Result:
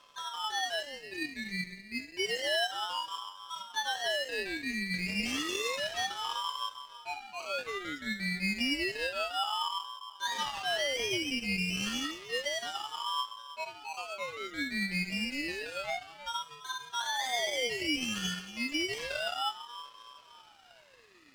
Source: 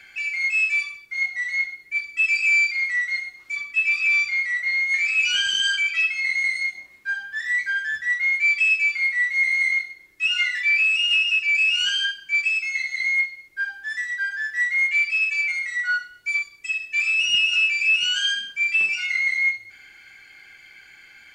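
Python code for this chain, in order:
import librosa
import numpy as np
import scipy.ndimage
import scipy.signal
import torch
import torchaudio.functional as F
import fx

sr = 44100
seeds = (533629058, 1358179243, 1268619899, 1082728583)

y = fx.peak_eq(x, sr, hz=5300.0, db=8.0, octaves=0.27)
y = fx.echo_split(y, sr, split_hz=2500.0, low_ms=309, high_ms=168, feedback_pct=52, wet_db=-14)
y = np.maximum(y, 0.0)
y = fx.ring_lfo(y, sr, carrier_hz=600.0, swing_pct=70, hz=0.3)
y = y * librosa.db_to_amplitude(-6.5)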